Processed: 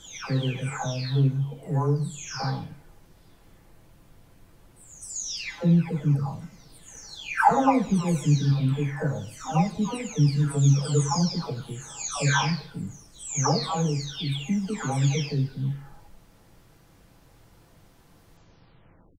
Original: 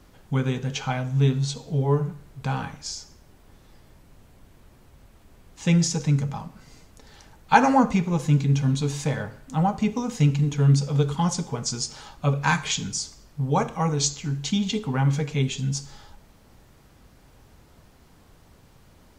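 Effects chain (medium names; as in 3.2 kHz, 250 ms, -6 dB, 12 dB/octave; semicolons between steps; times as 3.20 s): delay that grows with frequency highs early, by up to 810 ms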